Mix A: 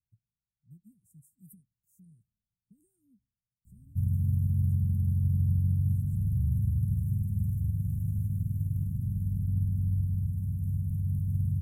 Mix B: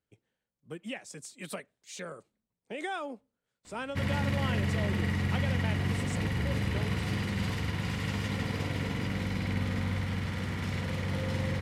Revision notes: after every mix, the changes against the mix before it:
background -5.5 dB; master: remove inverse Chebyshev band-stop 580–4000 Hz, stop band 70 dB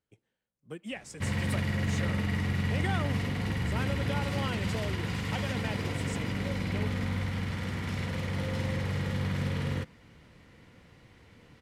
background: entry -2.75 s

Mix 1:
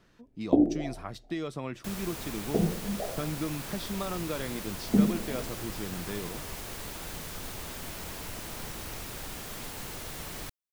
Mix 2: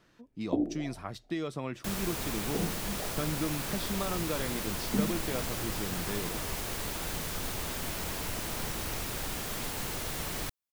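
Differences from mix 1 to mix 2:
first sound -7.5 dB; second sound +4.0 dB

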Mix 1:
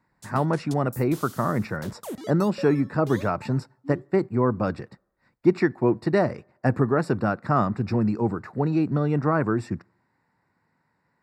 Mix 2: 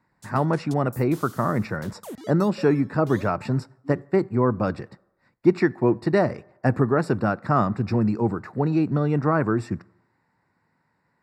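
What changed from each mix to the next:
speech: send +8.5 dB; background: send off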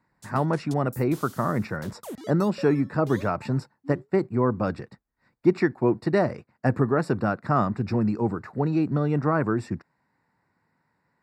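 reverb: off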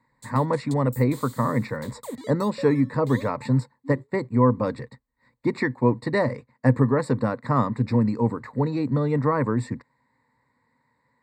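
master: add ripple EQ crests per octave 1, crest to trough 12 dB

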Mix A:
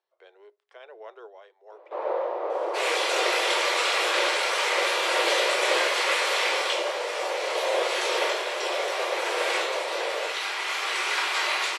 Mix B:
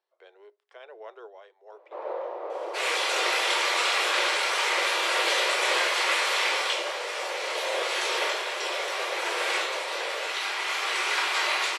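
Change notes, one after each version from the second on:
first sound -5.5 dB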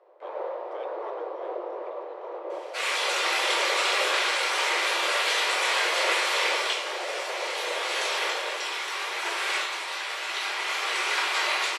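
first sound: entry -1.70 s

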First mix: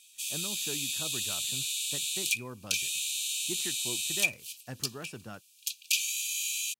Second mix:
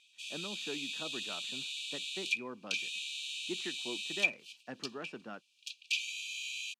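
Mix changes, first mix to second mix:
speech: add HPF 200 Hz 24 dB/oct; master: add LPF 3100 Hz 12 dB/oct

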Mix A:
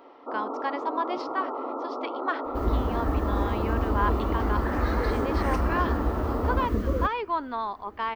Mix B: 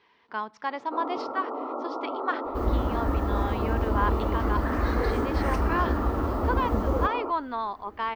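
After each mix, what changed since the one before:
first sound: entry +0.65 s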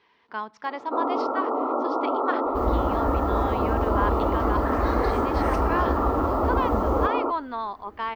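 first sound +7.5 dB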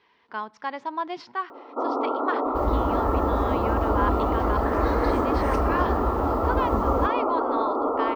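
first sound: entry +0.85 s

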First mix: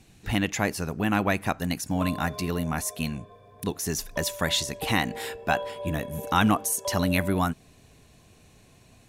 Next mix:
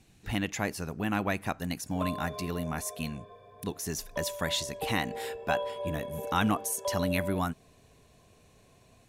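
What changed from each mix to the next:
speech -5.5 dB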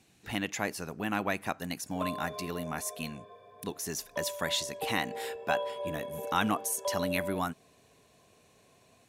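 master: add HPF 240 Hz 6 dB/oct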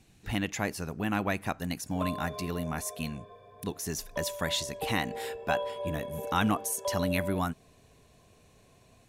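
master: remove HPF 240 Hz 6 dB/oct

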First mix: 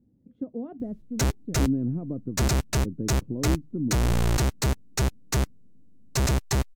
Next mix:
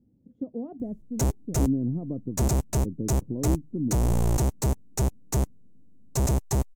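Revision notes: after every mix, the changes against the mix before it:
master: add band shelf 2500 Hz -11 dB 2.3 oct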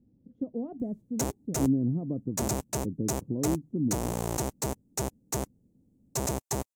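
background: add HPF 330 Hz 6 dB/oct

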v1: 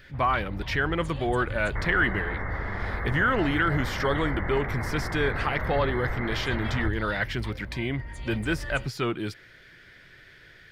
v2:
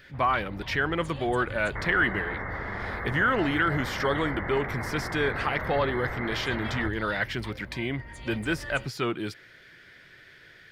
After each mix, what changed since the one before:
master: add low shelf 77 Hz -11.5 dB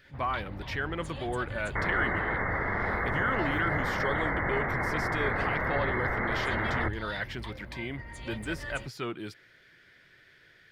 speech -6.5 dB; second sound +4.5 dB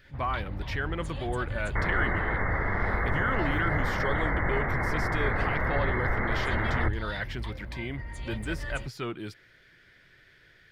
master: add low shelf 77 Hz +11.5 dB

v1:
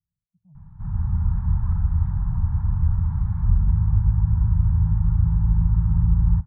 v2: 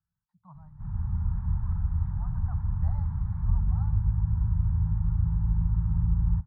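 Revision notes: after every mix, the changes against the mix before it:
speech: remove Gaussian blur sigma 20 samples; background -6.5 dB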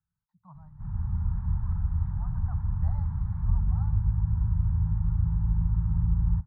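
none

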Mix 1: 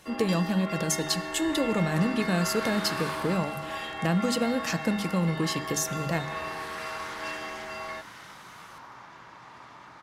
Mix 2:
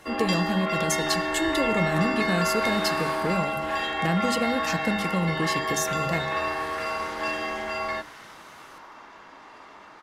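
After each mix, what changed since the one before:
first sound +8.0 dB; second sound: add HPF 210 Hz 24 dB/oct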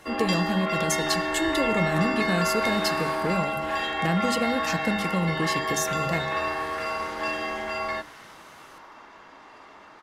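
second sound: send off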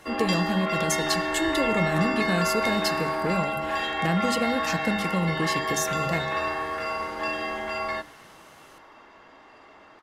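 second sound -6.0 dB

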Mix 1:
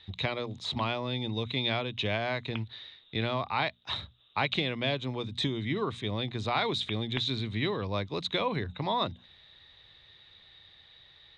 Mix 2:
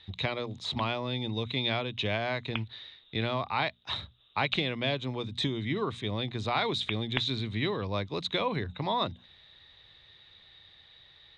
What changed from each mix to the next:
background +5.5 dB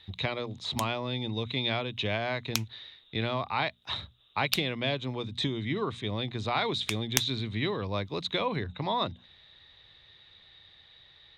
background: remove brick-wall FIR low-pass 3500 Hz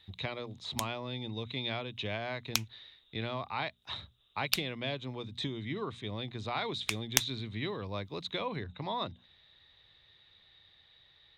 speech -6.0 dB

